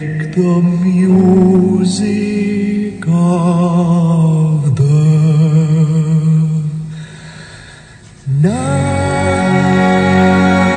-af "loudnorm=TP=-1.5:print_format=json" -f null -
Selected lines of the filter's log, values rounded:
"input_i" : "-11.9",
"input_tp" : "-2.2",
"input_lra" : "3.6",
"input_thresh" : "-22.4",